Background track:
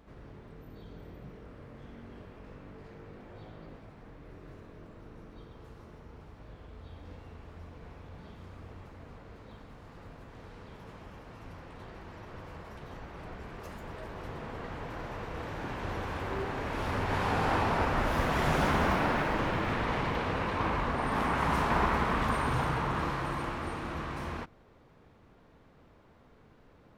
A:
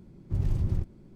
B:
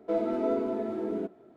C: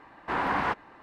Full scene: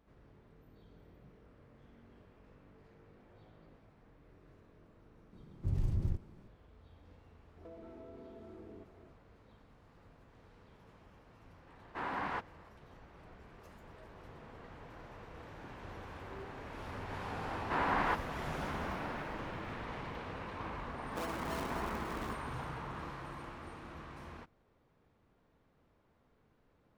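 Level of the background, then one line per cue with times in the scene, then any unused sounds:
background track -12 dB
5.33 add A -6 dB
7.57 add B -6 dB + compressor 10:1, threshold -43 dBFS
11.67 add C -10.5 dB
17.42 add C -5 dB
21.07 add B -14.5 dB + decimation with a swept rate 35× 3.8 Hz

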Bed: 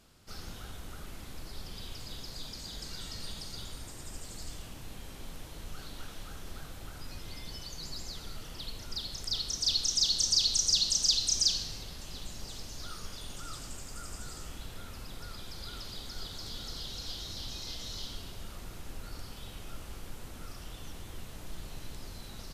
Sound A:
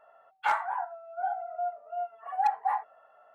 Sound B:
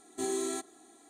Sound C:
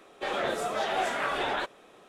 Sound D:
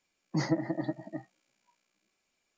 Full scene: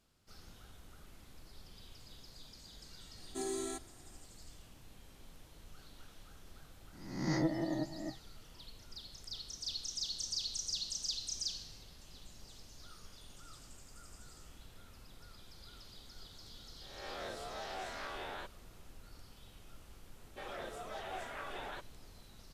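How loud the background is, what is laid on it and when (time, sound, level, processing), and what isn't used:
bed -12 dB
3.17 add B -6 dB
6.93 add D -6 dB + spectral swells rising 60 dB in 0.78 s
16.81 add C -17 dB + spectral swells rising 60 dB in 0.78 s
20.15 add C -15 dB
not used: A

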